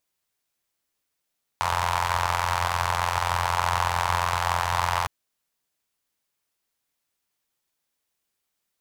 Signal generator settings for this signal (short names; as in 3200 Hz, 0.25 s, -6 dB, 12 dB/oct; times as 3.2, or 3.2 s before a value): four-cylinder engine model, steady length 3.46 s, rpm 2600, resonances 88/940 Hz